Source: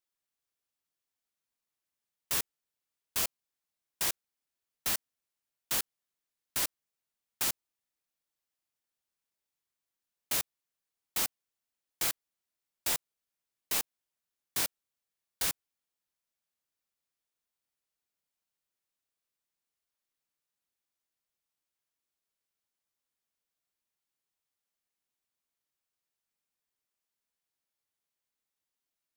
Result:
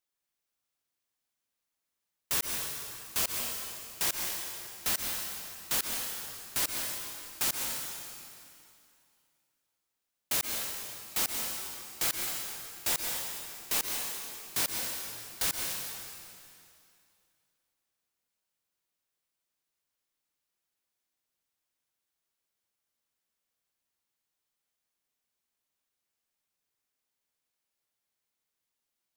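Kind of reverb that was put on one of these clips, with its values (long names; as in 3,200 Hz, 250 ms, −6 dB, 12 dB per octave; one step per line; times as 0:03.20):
dense smooth reverb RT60 2.5 s, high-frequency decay 0.95×, pre-delay 110 ms, DRR 1 dB
level +1 dB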